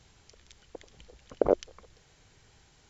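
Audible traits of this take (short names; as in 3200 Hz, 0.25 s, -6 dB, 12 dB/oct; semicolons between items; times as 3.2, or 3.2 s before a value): noise floor -62 dBFS; spectral tilt -5.5 dB/oct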